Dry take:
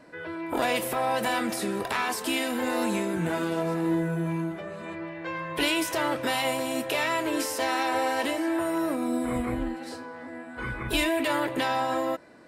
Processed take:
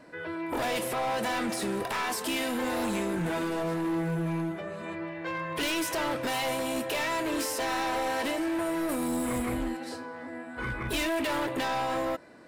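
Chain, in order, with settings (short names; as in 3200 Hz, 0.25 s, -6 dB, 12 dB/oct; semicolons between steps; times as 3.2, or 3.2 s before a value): 0.79–1.62 LPF 11000 Hz 12 dB/oct; 8.89–9.77 high shelf 4400 Hz +11.5 dB; overloaded stage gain 26.5 dB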